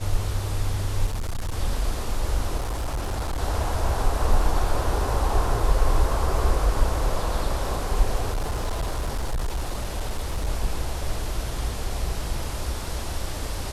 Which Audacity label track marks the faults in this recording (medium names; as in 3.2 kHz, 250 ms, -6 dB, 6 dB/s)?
1.060000	1.540000	clipped -24 dBFS
2.570000	3.410000	clipped -23.5 dBFS
8.330000	10.470000	clipped -22 dBFS